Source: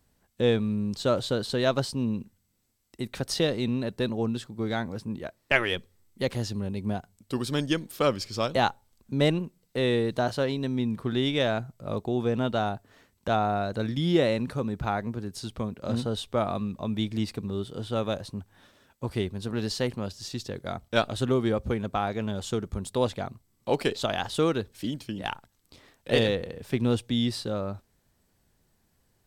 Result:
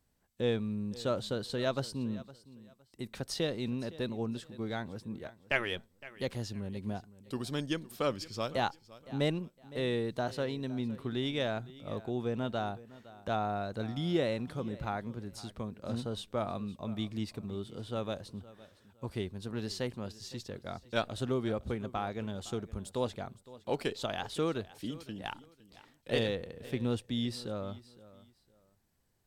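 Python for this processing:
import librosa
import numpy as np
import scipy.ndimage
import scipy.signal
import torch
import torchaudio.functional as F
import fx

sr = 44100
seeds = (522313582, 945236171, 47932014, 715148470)

y = fx.echo_feedback(x, sr, ms=512, feedback_pct=25, wet_db=-18.5)
y = F.gain(torch.from_numpy(y), -7.5).numpy()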